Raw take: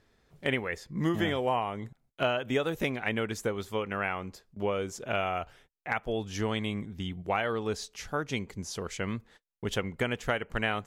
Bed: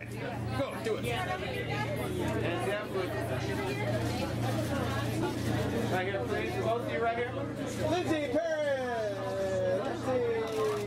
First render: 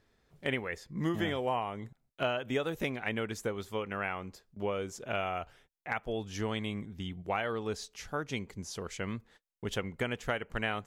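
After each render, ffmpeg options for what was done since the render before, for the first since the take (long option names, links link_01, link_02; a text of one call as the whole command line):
ffmpeg -i in.wav -af "volume=-3.5dB" out.wav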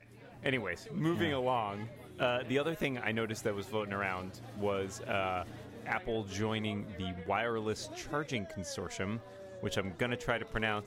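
ffmpeg -i in.wav -i bed.wav -filter_complex "[1:a]volume=-17dB[link_01];[0:a][link_01]amix=inputs=2:normalize=0" out.wav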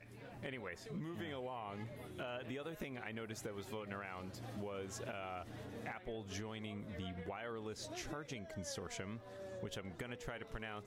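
ffmpeg -i in.wav -af "alimiter=level_in=5.5dB:limit=-24dB:level=0:latency=1:release=344,volume=-5.5dB,acompressor=threshold=-41dB:ratio=6" out.wav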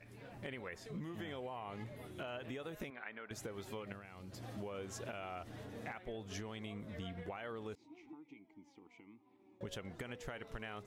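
ffmpeg -i in.wav -filter_complex "[0:a]asettb=1/sr,asplit=3[link_01][link_02][link_03];[link_01]atrim=end=2.904[link_04];[link_02]atrim=start=2.9:end=3.31,asetpts=PTS-STARTPTS,afade=type=in:duration=0.004:curve=qsin,afade=type=out:start_time=0.406:duration=0.004:curve=qsin,highpass=350,equalizer=frequency=360:width_type=q:width=4:gain=-8,equalizer=frequency=510:width_type=q:width=4:gain=-4,equalizer=frequency=750:width_type=q:width=4:gain=-3,equalizer=frequency=1500:width_type=q:width=4:gain=4,equalizer=frequency=2900:width_type=q:width=4:gain=-6,lowpass=frequency=3400:width=0.5412,lowpass=frequency=3400:width=1.3066[link_05];[link_03]atrim=start=3.306[link_06];[link_04][link_05]acrossfade=duration=0.004:curve1=hsin:curve2=qsin[link_07];[link_07][link_06]acrossfade=duration=0.004:curve1=qsin:curve2=hsin,asettb=1/sr,asplit=3[link_08][link_09][link_10];[link_08]atrim=end=3.924[link_11];[link_09]atrim=start=3.92:end=4.32,asetpts=PTS-STARTPTS,afade=type=in:duration=0.004:curve=qsin,afade=type=out:start_time=0.396:duration=0.004:curve=qsin,equalizer=frequency=1100:width=0.31:gain=-9.5[link_12];[link_10]atrim=start=4.316[link_13];[link_11][link_12]acrossfade=duration=0.004:curve1=hsin:curve2=qsin[link_14];[link_14][link_13]acrossfade=duration=0.004:curve1=qsin:curve2=hsin,asettb=1/sr,asplit=3[link_15][link_16][link_17];[link_15]atrim=end=7.754[link_18];[link_16]atrim=start=7.75:end=9.61,asetpts=PTS-STARTPTS,afade=type=in:duration=0.004:curve=qsin,afade=type=out:start_time=1.856:duration=0.004:curve=qsin,asplit=3[link_19][link_20][link_21];[link_19]bandpass=frequency=300:width_type=q:width=8,volume=0dB[link_22];[link_20]bandpass=frequency=870:width_type=q:width=8,volume=-6dB[link_23];[link_21]bandpass=frequency=2240:width_type=q:width=8,volume=-9dB[link_24];[link_22][link_23][link_24]amix=inputs=3:normalize=0[link_25];[link_17]atrim=start=9.606[link_26];[link_18][link_25]acrossfade=duration=0.004:curve1=hsin:curve2=qsin[link_27];[link_27][link_26]acrossfade=duration=0.004:curve1=qsin:curve2=hsin" out.wav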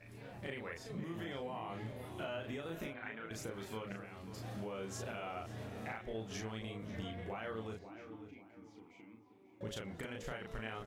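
ffmpeg -i in.wav -filter_complex "[0:a]asplit=2[link_01][link_02];[link_02]adelay=36,volume=-2.5dB[link_03];[link_01][link_03]amix=inputs=2:normalize=0,asplit=2[link_04][link_05];[link_05]adelay=541,lowpass=frequency=2300:poles=1,volume=-11dB,asplit=2[link_06][link_07];[link_07]adelay=541,lowpass=frequency=2300:poles=1,volume=0.36,asplit=2[link_08][link_09];[link_09]adelay=541,lowpass=frequency=2300:poles=1,volume=0.36,asplit=2[link_10][link_11];[link_11]adelay=541,lowpass=frequency=2300:poles=1,volume=0.36[link_12];[link_04][link_06][link_08][link_10][link_12]amix=inputs=5:normalize=0" out.wav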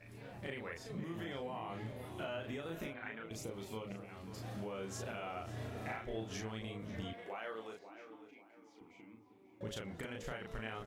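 ffmpeg -i in.wav -filter_complex "[0:a]asettb=1/sr,asplit=3[link_01][link_02][link_03];[link_01]atrim=end=3.234[link_04];[link_02]atrim=start=3.23:end=4.09,asetpts=PTS-STARTPTS,afade=type=in:duration=0.004:curve=qsin,afade=type=out:start_time=0.856:duration=0.004:curve=qsin,equalizer=frequency=1600:width=3.1:gain=-14.5[link_05];[link_03]atrim=start=4.086[link_06];[link_04][link_05]acrossfade=duration=0.004:curve1=hsin:curve2=qsin[link_07];[link_07][link_06]acrossfade=duration=0.004:curve1=qsin:curve2=hsin,asettb=1/sr,asplit=3[link_08][link_09][link_10];[link_08]atrim=end=5.444[link_11];[link_09]atrim=start=5.44:end=6.34,asetpts=PTS-STARTPTS,afade=type=in:duration=0.004:curve=qsin,afade=type=out:start_time=0.896:duration=0.004:curve=qsin,asplit=2[link_12][link_13];[link_13]adelay=33,volume=-3.5dB[link_14];[link_12][link_14]amix=inputs=2:normalize=0,atrim=end_sample=39690[link_15];[link_10]atrim=start=6.336[link_16];[link_11][link_15]acrossfade=duration=0.004:curve1=hsin:curve2=qsin[link_17];[link_17][link_16]acrossfade=duration=0.004:curve1=qsin:curve2=hsin,asettb=1/sr,asplit=3[link_18][link_19][link_20];[link_18]atrim=end=7.134[link_21];[link_19]atrim=start=7.13:end=8.81,asetpts=PTS-STARTPTS,afade=type=in:duration=0.004:curve=qsin,afade=type=out:start_time=1.676:duration=0.004:curve=qsin,highpass=390[link_22];[link_20]atrim=start=8.806[link_23];[link_21][link_22]acrossfade=duration=0.004:curve1=hsin:curve2=qsin[link_24];[link_24][link_23]acrossfade=duration=0.004:curve1=qsin:curve2=hsin" out.wav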